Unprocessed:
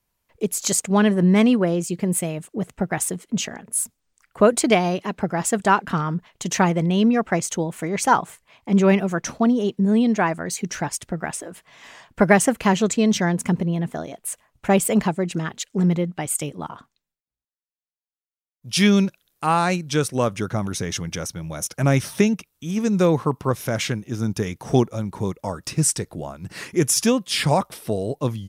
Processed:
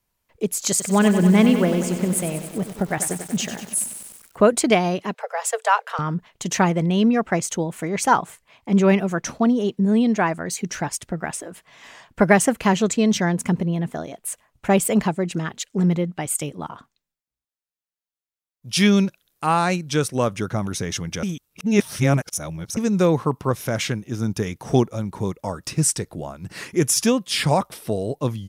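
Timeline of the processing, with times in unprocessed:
0:00.70–0:04.47: feedback echo at a low word length 95 ms, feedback 80%, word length 6 bits, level −9.5 dB
0:05.14–0:05.99: Chebyshev high-pass filter 440 Hz, order 10
0:21.23–0:22.77: reverse

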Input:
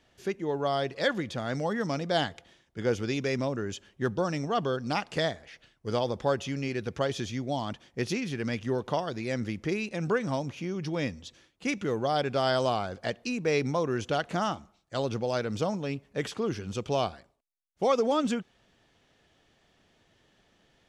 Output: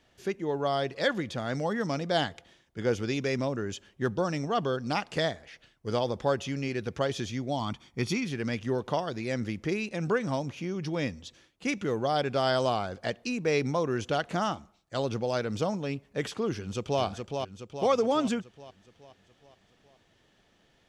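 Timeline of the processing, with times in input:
0:07.60–0:08.25: comb filter 0.9 ms, depth 52%
0:16.55–0:17.02: delay throw 420 ms, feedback 55%, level −5 dB

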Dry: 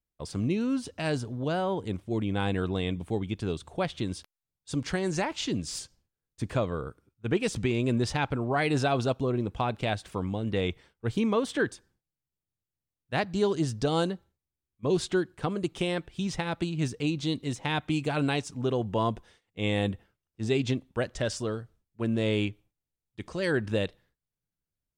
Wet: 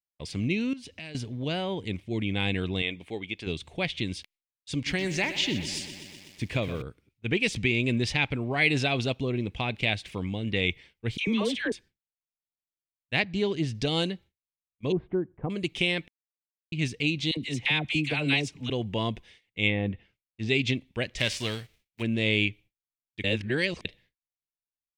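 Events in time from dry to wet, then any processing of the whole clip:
0:00.73–0:01.15: downward compressor 4 to 1, threshold −42 dBFS
0:02.82–0:03.47: bass and treble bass −13 dB, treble −4 dB
0:04.74–0:06.82: feedback echo at a low word length 124 ms, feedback 80%, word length 8 bits, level −12 dB
0:11.17–0:11.72: all-pass dispersion lows, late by 102 ms, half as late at 1,100 Hz
0:13.22–0:13.75: high-shelf EQ 3,800 Hz −9 dB
0:14.92–0:15.50: low-pass filter 1,100 Hz 24 dB per octave
0:16.08–0:16.72: silence
0:17.31–0:18.70: all-pass dispersion lows, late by 59 ms, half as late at 810 Hz
0:19.66–0:20.49: treble cut that deepens with the level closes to 1,200 Hz, closed at −22.5 dBFS
0:21.17–0:22.01: spectral envelope flattened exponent 0.6
0:23.24–0:23.85: reverse
whole clip: drawn EQ curve 240 Hz 0 dB, 1,400 Hz −7 dB, 2,200 Hz +12 dB, 8,200 Hz −2 dB; noise gate with hold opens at −56 dBFS

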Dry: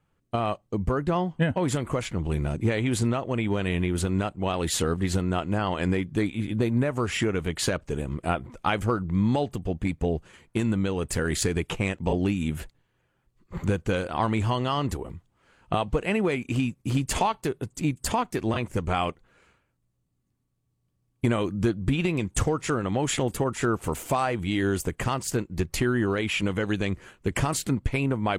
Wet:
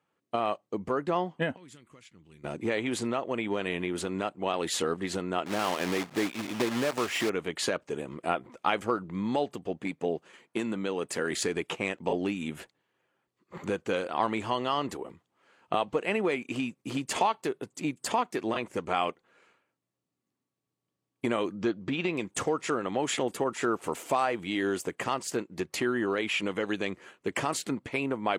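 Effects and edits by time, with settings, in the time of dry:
0:01.56–0:02.44: guitar amp tone stack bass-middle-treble 6-0-2
0:05.46–0:07.31: one scale factor per block 3 bits
0:09.82–0:11.31: high-pass filter 120 Hz
0:21.55–0:22.13: low-pass filter 6,400 Hz 24 dB per octave
0:23.50–0:25.02: floating-point word with a short mantissa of 6 bits
whole clip: high-pass filter 290 Hz 12 dB per octave; high-shelf EQ 9,900 Hz −11 dB; notch filter 1,500 Hz, Q 30; level −1 dB

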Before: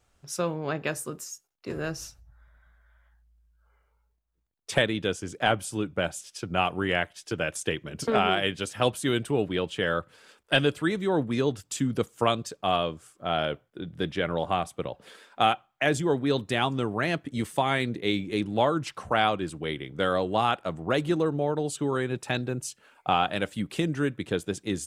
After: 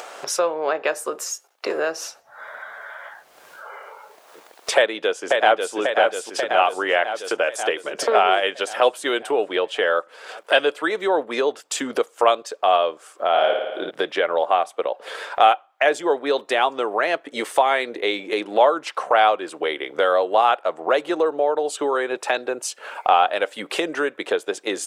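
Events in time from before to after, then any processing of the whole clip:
0:04.76–0:05.75: delay throw 540 ms, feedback 60%, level −4 dB
0:13.28–0:13.91: flutter between parallel walls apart 9.6 metres, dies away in 0.77 s
whole clip: high-pass filter 510 Hz 24 dB per octave; spectral tilt −3 dB per octave; upward compression, threshold −24 dBFS; level +8 dB

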